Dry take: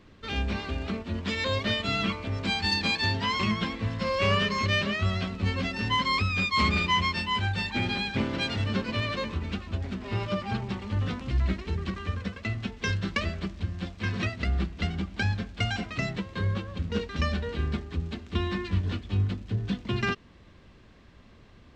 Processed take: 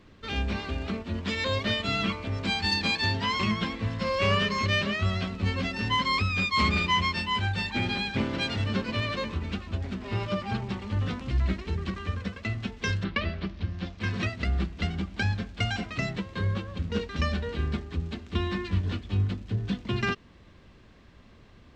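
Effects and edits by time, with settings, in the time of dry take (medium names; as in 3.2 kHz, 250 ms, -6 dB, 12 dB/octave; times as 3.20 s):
13.03–13.99 s: low-pass 3.8 kHz -> 6.9 kHz 24 dB/octave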